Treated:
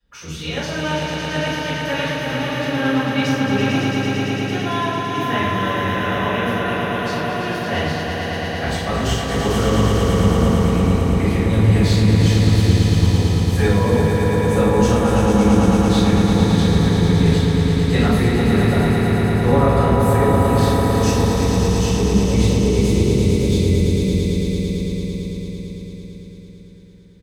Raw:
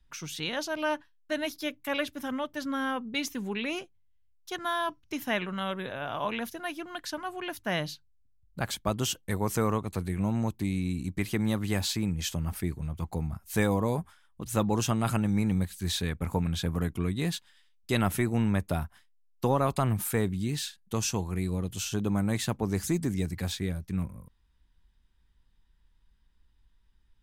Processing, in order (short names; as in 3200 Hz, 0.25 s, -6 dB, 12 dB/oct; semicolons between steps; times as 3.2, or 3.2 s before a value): octaver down 1 oct, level 0 dB; HPF 92 Hz 12 dB/oct; high shelf 9300 Hz +4.5 dB; spectral gain 21.62–24.11, 620–2000 Hz -20 dB; bell 13000 Hz -12.5 dB 1.1 oct; doubler 45 ms -11 dB; swelling echo 0.112 s, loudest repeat 5, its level -6 dB; shoebox room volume 180 m³, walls mixed, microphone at 5.9 m; gain -8.5 dB